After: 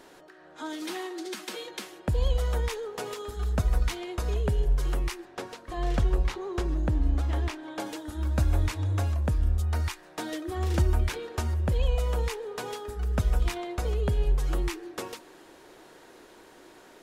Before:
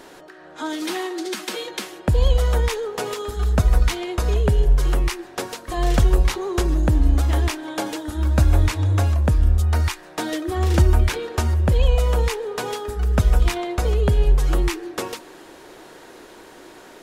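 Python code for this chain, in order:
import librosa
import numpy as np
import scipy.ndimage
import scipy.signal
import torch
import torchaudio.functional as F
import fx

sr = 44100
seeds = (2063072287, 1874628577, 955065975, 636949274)

y = fx.high_shelf(x, sr, hz=6700.0, db=-12.0, at=(5.25, 7.8))
y = F.gain(torch.from_numpy(y), -8.5).numpy()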